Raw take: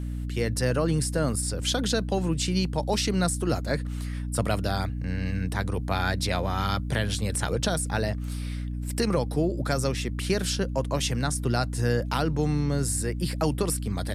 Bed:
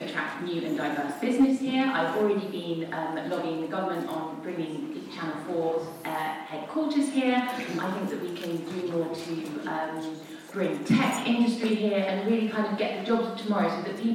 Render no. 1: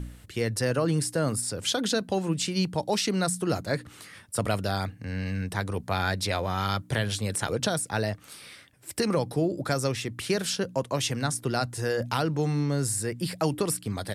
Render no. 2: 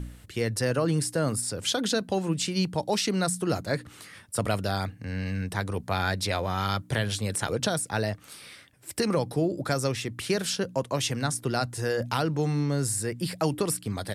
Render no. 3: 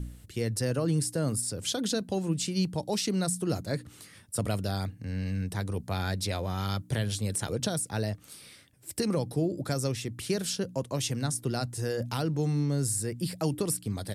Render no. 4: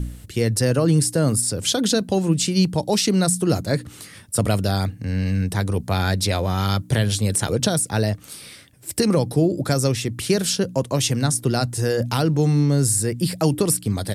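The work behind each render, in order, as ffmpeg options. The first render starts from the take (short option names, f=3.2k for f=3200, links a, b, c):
-af "bandreject=f=60:t=h:w=4,bandreject=f=120:t=h:w=4,bandreject=f=180:t=h:w=4,bandreject=f=240:t=h:w=4,bandreject=f=300:t=h:w=4"
-af anull
-af "equalizer=f=1.4k:t=o:w=3:g=-8.5"
-af "volume=10dB"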